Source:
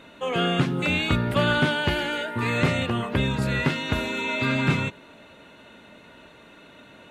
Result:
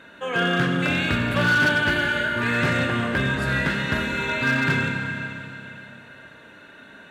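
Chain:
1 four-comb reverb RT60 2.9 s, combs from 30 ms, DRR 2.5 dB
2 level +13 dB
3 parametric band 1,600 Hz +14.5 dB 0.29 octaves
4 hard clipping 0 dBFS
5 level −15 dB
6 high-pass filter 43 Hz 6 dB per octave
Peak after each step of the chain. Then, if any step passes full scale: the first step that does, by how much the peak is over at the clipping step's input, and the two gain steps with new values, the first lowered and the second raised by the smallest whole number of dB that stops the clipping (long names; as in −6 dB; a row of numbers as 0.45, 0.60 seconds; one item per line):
−7.5, +5.5, +9.0, 0.0, −15.0, −13.0 dBFS
step 2, 9.0 dB
step 2 +4 dB, step 5 −6 dB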